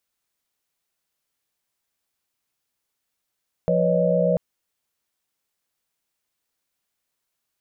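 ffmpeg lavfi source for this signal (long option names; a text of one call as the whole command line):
ffmpeg -f lavfi -i "aevalsrc='0.075*(sin(2*PI*174.61*t)+sin(2*PI*493.88*t)+sin(2*PI*554.37*t)+sin(2*PI*622.25*t))':duration=0.69:sample_rate=44100" out.wav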